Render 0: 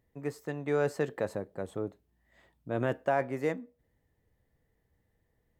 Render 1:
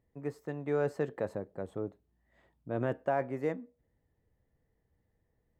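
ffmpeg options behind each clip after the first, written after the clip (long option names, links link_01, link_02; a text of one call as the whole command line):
ffmpeg -i in.wav -af "highshelf=frequency=2200:gain=-9.5,volume=-1.5dB" out.wav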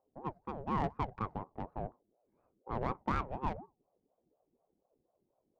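ffmpeg -i in.wav -af "adynamicsmooth=sensitivity=4:basefreq=540,aeval=exprs='val(0)*sin(2*PI*460*n/s+460*0.45/4.1*sin(2*PI*4.1*n/s))':channel_layout=same" out.wav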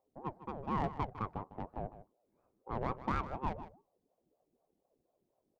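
ffmpeg -i in.wav -af "aecho=1:1:154:0.2,volume=-1dB" out.wav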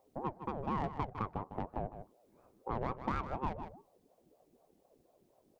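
ffmpeg -i in.wav -af "acompressor=threshold=-48dB:ratio=2.5,volume=10.5dB" out.wav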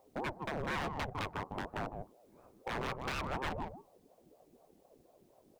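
ffmpeg -i in.wav -af "aeval=exprs='0.0188*(abs(mod(val(0)/0.0188+3,4)-2)-1)':channel_layout=same,volume=4.5dB" out.wav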